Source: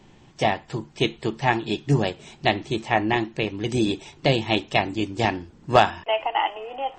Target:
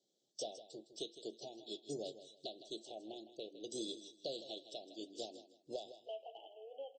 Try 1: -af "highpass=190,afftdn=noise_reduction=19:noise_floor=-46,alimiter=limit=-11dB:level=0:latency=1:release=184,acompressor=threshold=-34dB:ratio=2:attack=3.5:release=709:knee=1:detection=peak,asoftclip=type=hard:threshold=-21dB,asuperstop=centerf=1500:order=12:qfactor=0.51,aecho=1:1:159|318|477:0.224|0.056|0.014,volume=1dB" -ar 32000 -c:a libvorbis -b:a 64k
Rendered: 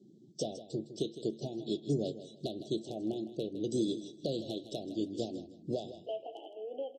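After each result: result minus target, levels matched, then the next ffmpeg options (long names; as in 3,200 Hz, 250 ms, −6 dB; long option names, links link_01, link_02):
250 Hz band +5.5 dB; downward compressor: peak gain reduction −4 dB
-af "highpass=690,afftdn=noise_reduction=19:noise_floor=-46,alimiter=limit=-11dB:level=0:latency=1:release=184,acompressor=threshold=-34dB:ratio=2:attack=3.5:release=709:knee=1:detection=peak,asoftclip=type=hard:threshold=-21dB,asuperstop=centerf=1500:order=12:qfactor=0.51,aecho=1:1:159|318|477:0.224|0.056|0.014,volume=1dB" -ar 32000 -c:a libvorbis -b:a 64k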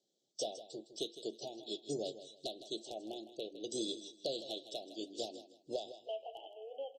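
downward compressor: peak gain reduction −4.5 dB
-af "highpass=690,afftdn=noise_reduction=19:noise_floor=-46,alimiter=limit=-11dB:level=0:latency=1:release=184,acompressor=threshold=-43dB:ratio=2:attack=3.5:release=709:knee=1:detection=peak,asoftclip=type=hard:threshold=-21dB,asuperstop=centerf=1500:order=12:qfactor=0.51,aecho=1:1:159|318|477:0.224|0.056|0.014,volume=1dB" -ar 32000 -c:a libvorbis -b:a 64k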